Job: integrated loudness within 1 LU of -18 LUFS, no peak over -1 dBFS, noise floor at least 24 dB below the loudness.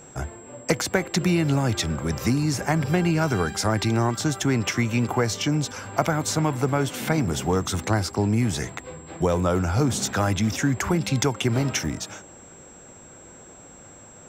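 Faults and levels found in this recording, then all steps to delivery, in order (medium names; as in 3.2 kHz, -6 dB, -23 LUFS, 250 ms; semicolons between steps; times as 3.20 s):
steady tone 7.6 kHz; tone level -47 dBFS; loudness -24.0 LUFS; peak level -5.5 dBFS; loudness target -18.0 LUFS
-> band-stop 7.6 kHz, Q 30; trim +6 dB; peak limiter -1 dBFS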